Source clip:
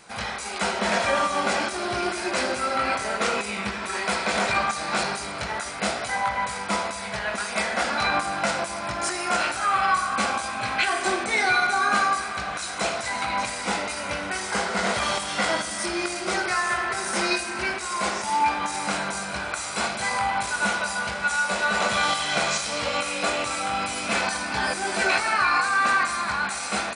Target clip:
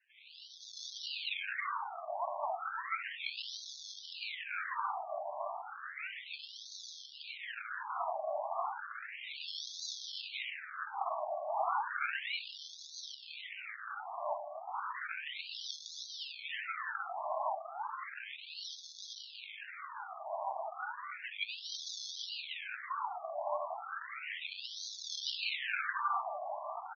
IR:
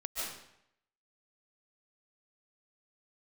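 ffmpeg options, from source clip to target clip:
-filter_complex "[0:a]equalizer=frequency=820:width_type=o:width=0.44:gain=-14.5,asplit=2[link_01][link_02];[link_02]adelay=319,lowpass=frequency=2700:poles=1,volume=-5dB,asplit=2[link_03][link_04];[link_04]adelay=319,lowpass=frequency=2700:poles=1,volume=0.34,asplit=2[link_05][link_06];[link_06]adelay=319,lowpass=frequency=2700:poles=1,volume=0.34,asplit=2[link_07][link_08];[link_08]adelay=319,lowpass=frequency=2700:poles=1,volume=0.34[link_09];[link_01][link_03][link_05][link_07][link_09]amix=inputs=5:normalize=0[link_10];[1:a]atrim=start_sample=2205,afade=type=out:start_time=0.37:duration=0.01,atrim=end_sample=16758[link_11];[link_10][link_11]afir=irnorm=-1:irlink=0,adynamicsmooth=sensitivity=1:basefreq=1400,asettb=1/sr,asplit=3[link_12][link_13][link_14];[link_12]atrim=end=24.414[link_15];[link_13]atrim=start=24.41:end=25.55,asetpts=PTS-STARTPTS,afade=type=in:duration=0.004:curve=qsin,afade=type=out:start_time=1.136:duration=0.004:curve=qsin,equalizer=frequency=2800:width_type=o:width=0.36:gain=14[link_16];[link_14]atrim=start=25.546[link_17];[link_15][link_16]acrossfade=duration=0.004:curve1=hsin:curve2=qsin[link_18];[link_18][link_17]acrossfade=duration=0.004:curve1=qsin:curve2=hsin,acrusher=samples=36:mix=1:aa=0.000001:lfo=1:lforange=21.6:lforate=1.6,afftfilt=real='re*between(b*sr/1024,800*pow(4800/800,0.5+0.5*sin(2*PI*0.33*pts/sr))/1.41,800*pow(4800/800,0.5+0.5*sin(2*PI*0.33*pts/sr))*1.41)':imag='im*between(b*sr/1024,800*pow(4800/800,0.5+0.5*sin(2*PI*0.33*pts/sr))/1.41,800*pow(4800/800,0.5+0.5*sin(2*PI*0.33*pts/sr))*1.41)':win_size=1024:overlap=0.75,volume=-3dB"

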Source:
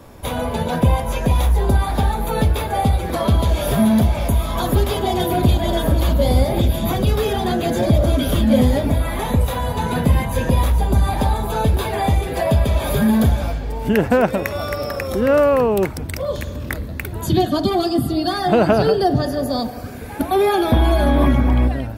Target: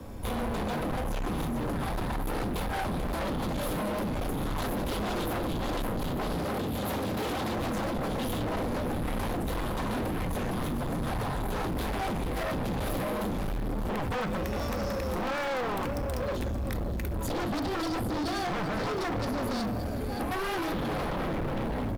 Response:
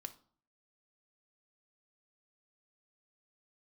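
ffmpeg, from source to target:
-filter_complex "[0:a]aecho=1:1:574|1148|1722|2296|2870:0.2|0.0998|0.0499|0.0249|0.0125,alimiter=limit=-10.5dB:level=0:latency=1:release=78,lowshelf=frequency=340:gain=8.5,afreqshift=-13,aeval=exprs='0.178*(abs(mod(val(0)/0.178+3,4)-2)-1)':channel_layout=same,asettb=1/sr,asplit=3[link_01][link_02][link_03];[link_01]atrim=end=6.354[link_04];[link_02]atrim=start=6.35:end=7.59,asetpts=PTS-STARTPTS,afade=type=in:duration=0.004:curve=qsin,afade=type=out:start_time=1.236:duration=0.004:curve=qsin,highpass=frequency=64:width=0.5412,highpass=frequency=64:width=1.3066[link_05];[link_03]atrim=start=7.586[link_06];[link_04][link_05]acrossfade=duration=0.004:curve1=hsin:curve2=qsin[link_07];[link_07][link_06]acrossfade=duration=0.004:curve1=qsin:curve2=hsin,acrusher=bits=8:mode=log:mix=0:aa=0.000001[link_08];[1:a]atrim=start_sample=2205,atrim=end_sample=3528[link_09];[link_08][link_09]afir=irnorm=-1:irlink=0,asoftclip=type=tanh:threshold=-28.5dB"

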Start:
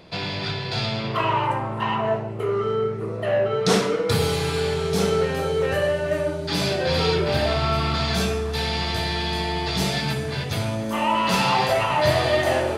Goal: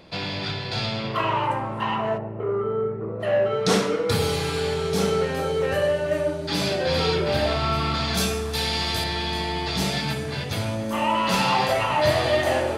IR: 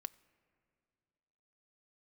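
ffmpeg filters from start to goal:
-filter_complex "[0:a]asplit=3[link_01][link_02][link_03];[link_01]afade=type=out:start_time=2.17:duration=0.02[link_04];[link_02]lowpass=1300,afade=type=in:start_time=2.17:duration=0.02,afade=type=out:start_time=3.19:duration=0.02[link_05];[link_03]afade=type=in:start_time=3.19:duration=0.02[link_06];[link_04][link_05][link_06]amix=inputs=3:normalize=0,asettb=1/sr,asplit=3[link_07][link_08][link_09];[link_07]atrim=end=8.174[link_10];[link_08]atrim=start=8.17:end=9.04,asetpts=PTS-STARTPTS,afade=type=in:duration=0.004:curve=qsin,afade=type=out:start_time=0.866:duration=0.004:curve=qsin,aemphasis=mode=production:type=cd[link_11];[link_09]atrim=start=9.036[link_12];[link_10][link_11]acrossfade=duration=0.004:curve1=hsin:curve2=qsin[link_13];[link_13][link_12]acrossfade=duration=0.004:curve1=qsin:curve2=hsin[link_14];[1:a]atrim=start_sample=2205[link_15];[link_14][link_15]afir=irnorm=-1:irlink=0,volume=3dB"

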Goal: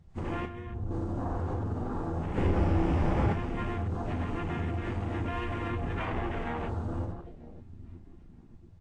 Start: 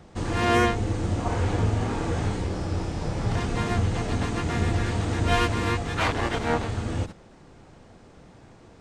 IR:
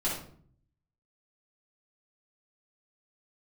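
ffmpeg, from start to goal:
-filter_complex "[0:a]asettb=1/sr,asplit=3[link_01][link_02][link_03];[link_01]atrim=end=5.694[link_04];[link_02]atrim=start=5.69:end=6.32,asetpts=PTS-STARTPTS,afade=type=in:duration=0.004:curve=qsin,afade=type=out:start_time=0.626:duration=0.004:curve=qsin,lowshelf=frequency=470:gain=6[link_05];[link_03]atrim=start=6.316[link_06];[link_04][link_05]acrossfade=duration=0.004:curve1=hsin:curve2=qsin[link_07];[link_07][link_06]acrossfade=duration=0.004:curve1=qsin:curve2=hsin,asplit=2[link_08][link_09];[link_09]adelay=933,lowpass=frequency=3700:poles=1,volume=-19dB,asplit=2[link_10][link_11];[link_11]adelay=933,lowpass=frequency=3700:poles=1,volume=0.46,asplit=2[link_12][link_13];[link_13]adelay=933,lowpass=frequency=3700:poles=1,volume=0.46,asplit=2[link_14][link_15];[link_15]adelay=933,lowpass=frequency=3700:poles=1,volume=0.46[link_16];[link_08][link_10][link_12][link_14][link_16]amix=inputs=5:normalize=0,asplit=2[link_17][link_18];[1:a]atrim=start_sample=2205,afade=type=out:start_time=0.18:duration=0.01,atrim=end_sample=8379[link_19];[link_18][link_19]afir=irnorm=-1:irlink=0,volume=-9dB[link_20];[link_17][link_20]amix=inputs=2:normalize=0,alimiter=limit=-17dB:level=0:latency=1:release=59,asplit=3[link_21][link_22][link_23];[link_21]afade=type=out:start_time=2.36:duration=0.02[link_24];[link_22]acontrast=86,afade=type=in:start_time=2.36:duration=0.02,afade=type=out:start_time=3.32:duration=0.02[link_25];[link_23]afade=type=in:start_time=3.32:duration=0.02[link_26];[link_24][link_25][link_26]amix=inputs=3:normalize=0,afwtdn=0.02,asettb=1/sr,asplit=3[link_27][link_28][link_29];[link_27]atrim=end=0.454[link_30];[link_28]atrim=start=0.45:end=0.91,asetpts=PTS-STARTPTS,afade=type=in:duration=0.004:curve=qsin,afade=type=out:start_time=0.456:duration=0.004:curve=qsin,acrossover=split=180[link_31][link_32];[link_32]acompressor=threshold=-43dB:ratio=2.5[link_33];[link_31][link_33]amix=inputs=2:normalize=0[link_34];[link_29]atrim=start=0.906[link_35];[link_30][link_34]acrossfade=duration=0.004:curve1=hsin:curve2=qsin[link_36];[link_36][link_35]acrossfade=duration=0.004:curve1=qsin:curve2=hsin,volume=-7dB" -ar 32000 -c:a libvorbis -b:a 32k

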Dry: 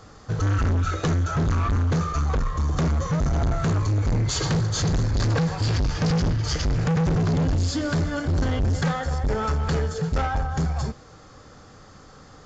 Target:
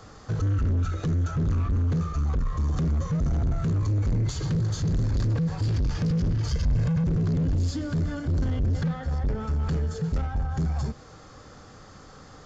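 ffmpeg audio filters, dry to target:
ffmpeg -i in.wav -filter_complex "[0:a]asettb=1/sr,asplit=3[link_01][link_02][link_03];[link_01]atrim=end=6.514[link_04];[link_02]atrim=start=6.51:end=7.04,asetpts=PTS-STARTPTS,afade=type=in:duration=0.004:curve=qsin,afade=type=out:start_time=0.526:duration=0.004:curve=qsin,aecho=1:1:1.9:0.92,atrim=end_sample=23373[link_05];[link_03]atrim=start=7.036[link_06];[link_04][link_05]acrossfade=duration=0.004:curve1=hsin:curve2=qsin[link_07];[link_07][link_06]acrossfade=duration=0.004:curve1=qsin:curve2=hsin,asettb=1/sr,asplit=3[link_08][link_09][link_10];[link_08]atrim=end=8.664[link_11];[link_09]atrim=start=8.66:end=9.4,asetpts=PTS-STARTPTS,afade=type=in:duration=0.004:curve=qsin,afade=type=out:start_time=0.736:duration=0.004:curve=qsin,lowpass=5200[link_12];[link_10]atrim=start=9.396[link_13];[link_11][link_12]acrossfade=duration=0.004:curve1=hsin:curve2=qsin[link_14];[link_14][link_13]acrossfade=duration=0.004:curve1=qsin:curve2=hsin,acrossover=split=280[link_15][link_16];[link_16]acompressor=threshold=-36dB:ratio=10[link_17];[link_15][link_17]amix=inputs=2:normalize=0,asoftclip=type=tanh:threshold=-18.5dB" out.wav

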